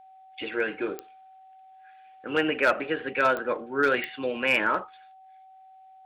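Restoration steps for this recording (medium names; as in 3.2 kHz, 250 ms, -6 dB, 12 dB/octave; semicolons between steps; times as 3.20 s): clip repair -14 dBFS; de-click; band-stop 760 Hz, Q 30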